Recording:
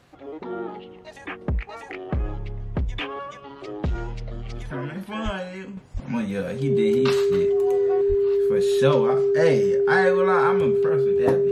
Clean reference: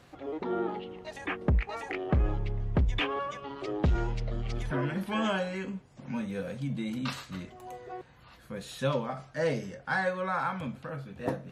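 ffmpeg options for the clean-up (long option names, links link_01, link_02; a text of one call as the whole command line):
ffmpeg -i in.wav -filter_complex "[0:a]bandreject=frequency=400:width=30,asplit=3[link_01][link_02][link_03];[link_01]afade=type=out:start_time=5.24:duration=0.02[link_04];[link_02]highpass=frequency=140:width=0.5412,highpass=frequency=140:width=1.3066,afade=type=in:start_time=5.24:duration=0.02,afade=type=out:start_time=5.36:duration=0.02[link_05];[link_03]afade=type=in:start_time=5.36:duration=0.02[link_06];[link_04][link_05][link_06]amix=inputs=3:normalize=0,asplit=3[link_07][link_08][link_09];[link_07]afade=type=out:start_time=5.93:duration=0.02[link_10];[link_08]highpass=frequency=140:width=0.5412,highpass=frequency=140:width=1.3066,afade=type=in:start_time=5.93:duration=0.02,afade=type=out:start_time=6.05:duration=0.02[link_11];[link_09]afade=type=in:start_time=6.05:duration=0.02[link_12];[link_10][link_11][link_12]amix=inputs=3:normalize=0,asplit=3[link_13][link_14][link_15];[link_13]afade=type=out:start_time=8.08:duration=0.02[link_16];[link_14]highpass=frequency=140:width=0.5412,highpass=frequency=140:width=1.3066,afade=type=in:start_time=8.08:duration=0.02,afade=type=out:start_time=8.2:duration=0.02[link_17];[link_15]afade=type=in:start_time=8.2:duration=0.02[link_18];[link_16][link_17][link_18]amix=inputs=3:normalize=0,asetnsamples=nb_out_samples=441:pad=0,asendcmd='5.77 volume volume -8dB',volume=0dB" out.wav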